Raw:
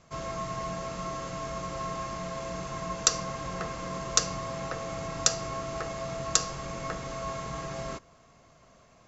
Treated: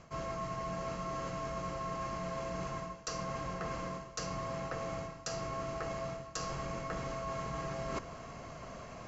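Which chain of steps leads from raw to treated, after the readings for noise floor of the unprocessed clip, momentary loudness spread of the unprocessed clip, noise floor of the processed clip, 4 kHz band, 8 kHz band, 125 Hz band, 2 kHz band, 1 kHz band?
-59 dBFS, 9 LU, -49 dBFS, -13.5 dB, no reading, -3.5 dB, -5.5 dB, -4.0 dB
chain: reverse; compression 16:1, threshold -47 dBFS, peak gain reduction 31.5 dB; reverse; treble shelf 5.8 kHz -9.5 dB; band-stop 3.6 kHz, Q 9.8; trim +12 dB

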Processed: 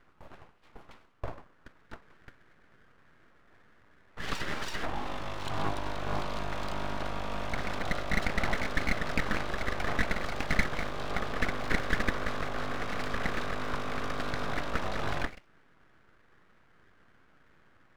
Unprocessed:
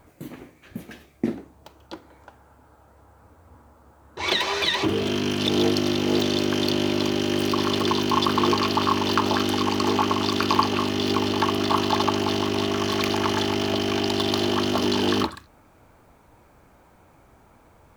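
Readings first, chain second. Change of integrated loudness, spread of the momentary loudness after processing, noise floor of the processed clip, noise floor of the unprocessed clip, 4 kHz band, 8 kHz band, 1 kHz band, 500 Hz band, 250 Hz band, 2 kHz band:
-11.5 dB, 7 LU, -62 dBFS, -56 dBFS, -16.5 dB, -13.0 dB, -10.5 dB, -12.5 dB, -16.0 dB, -3.5 dB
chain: band-pass filter 730 Hz, Q 1.5; full-wave rectifier

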